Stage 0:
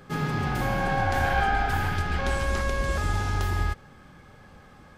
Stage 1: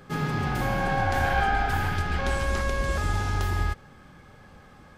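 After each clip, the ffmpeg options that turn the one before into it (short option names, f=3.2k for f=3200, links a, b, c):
-af anull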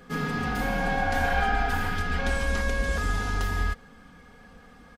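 -af "aecho=1:1:4.2:0.73,volume=-2dB"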